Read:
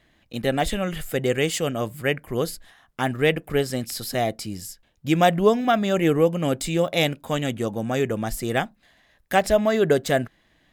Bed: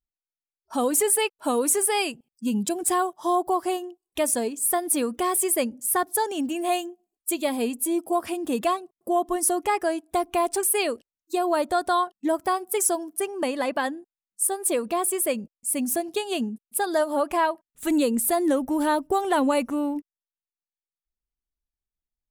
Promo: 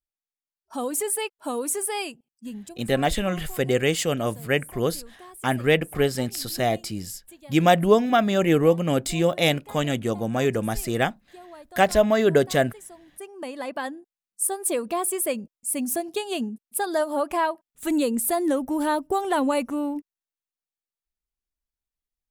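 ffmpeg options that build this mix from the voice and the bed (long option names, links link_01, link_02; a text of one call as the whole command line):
ffmpeg -i stem1.wav -i stem2.wav -filter_complex "[0:a]adelay=2450,volume=0.5dB[link_01];[1:a]volume=15.5dB,afade=type=out:start_time=2.06:duration=0.77:silence=0.149624,afade=type=in:start_time=12.95:duration=1.37:silence=0.0944061[link_02];[link_01][link_02]amix=inputs=2:normalize=0" out.wav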